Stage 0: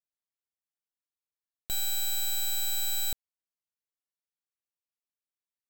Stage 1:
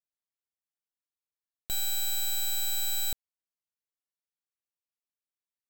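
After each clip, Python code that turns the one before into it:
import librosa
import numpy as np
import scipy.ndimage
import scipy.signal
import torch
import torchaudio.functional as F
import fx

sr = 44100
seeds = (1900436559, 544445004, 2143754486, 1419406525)

y = x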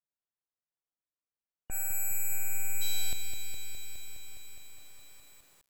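y = fx.spec_erase(x, sr, start_s=1.03, length_s=1.78, low_hz=2900.0, high_hz=6600.0)
y = fx.env_lowpass(y, sr, base_hz=1500.0, full_db=-27.0)
y = fx.echo_crushed(y, sr, ms=207, feedback_pct=80, bits=9, wet_db=-6.5)
y = F.gain(torch.from_numpy(y), -1.0).numpy()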